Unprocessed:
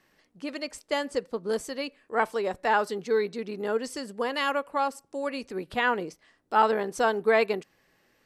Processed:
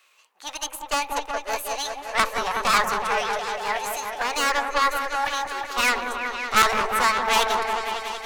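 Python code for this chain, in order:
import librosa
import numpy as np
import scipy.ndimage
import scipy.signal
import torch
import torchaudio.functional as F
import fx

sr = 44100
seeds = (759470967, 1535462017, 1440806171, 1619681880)

p1 = scipy.signal.sosfilt(scipy.signal.butter(4, 580.0, 'highpass', fs=sr, output='sos'), x)
p2 = fx.cheby_harmonics(p1, sr, harmonics=(2, 4), levels_db=(-8, -9), full_scale_db=-10.5)
p3 = 10.0 ** (-25.0 / 20.0) * (np.abs((p2 / 10.0 ** (-25.0 / 20.0) + 3.0) % 4.0 - 2.0) - 1.0)
p4 = p2 + (p3 * librosa.db_to_amplitude(-9.0))
p5 = fx.cheby_harmonics(p4, sr, harmonics=(6,), levels_db=(-11,), full_scale_db=-6.5)
p6 = fx.echo_opening(p5, sr, ms=185, hz=750, octaves=1, feedback_pct=70, wet_db=-3)
p7 = fx.formant_shift(p6, sr, semitones=6)
y = p7 * librosa.db_to_amplitude(4.5)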